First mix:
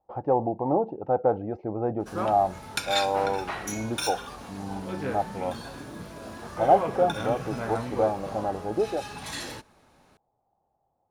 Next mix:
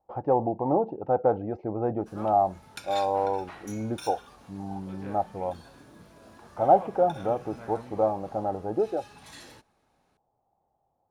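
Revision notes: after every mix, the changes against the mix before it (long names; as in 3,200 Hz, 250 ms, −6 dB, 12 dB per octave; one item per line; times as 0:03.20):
background −11.5 dB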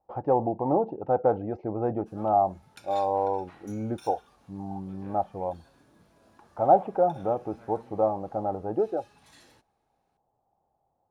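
background −9.0 dB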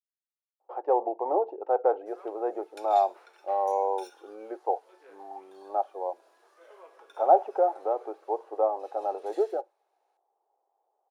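speech: entry +0.60 s
master: add elliptic high-pass filter 380 Hz, stop band 60 dB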